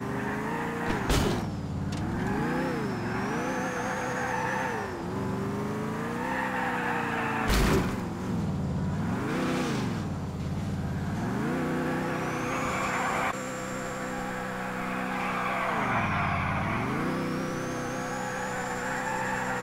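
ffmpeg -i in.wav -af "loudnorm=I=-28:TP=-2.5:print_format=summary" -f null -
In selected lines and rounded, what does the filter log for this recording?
Input Integrated:    -30.1 LUFS
Input True Peak:     -14.6 dBTP
Input LRA:             2.0 LU
Input Threshold:     -40.1 LUFS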